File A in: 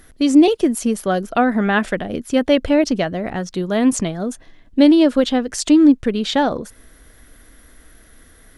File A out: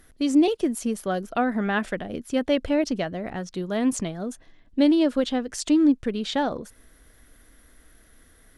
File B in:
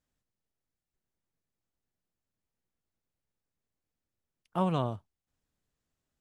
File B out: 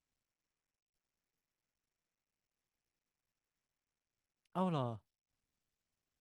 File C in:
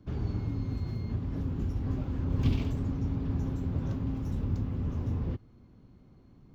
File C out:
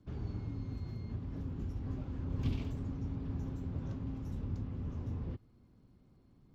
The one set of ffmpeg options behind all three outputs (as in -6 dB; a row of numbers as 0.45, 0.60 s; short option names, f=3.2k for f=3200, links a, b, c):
-af "volume=-7.5dB" -ar 44100 -c:a sbc -b:a 128k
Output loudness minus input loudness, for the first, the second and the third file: -7.5, -7.5, -7.5 LU